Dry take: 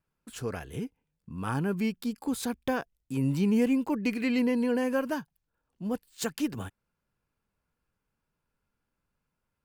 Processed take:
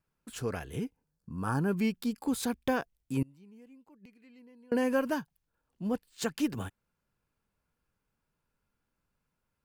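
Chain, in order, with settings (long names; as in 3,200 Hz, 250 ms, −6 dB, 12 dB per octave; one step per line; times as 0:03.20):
0:00.95–0:01.68: gain on a spectral selection 1,800–4,100 Hz −10 dB
0:03.22–0:04.72: gate with flip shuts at −25 dBFS, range −30 dB
0:05.91–0:06.39: high-shelf EQ 7,800 Hz −7.5 dB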